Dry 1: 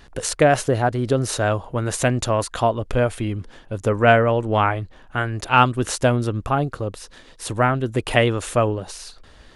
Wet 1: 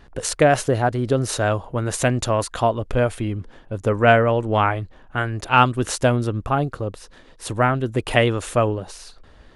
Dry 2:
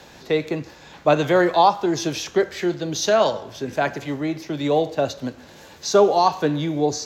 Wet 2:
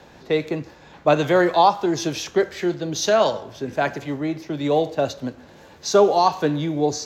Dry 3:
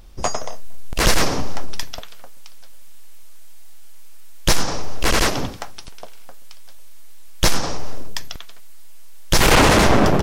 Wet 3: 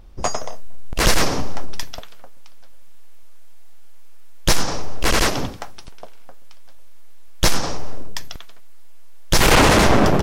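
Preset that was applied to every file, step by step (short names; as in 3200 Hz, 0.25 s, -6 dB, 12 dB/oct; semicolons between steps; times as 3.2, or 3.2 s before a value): mismatched tape noise reduction decoder only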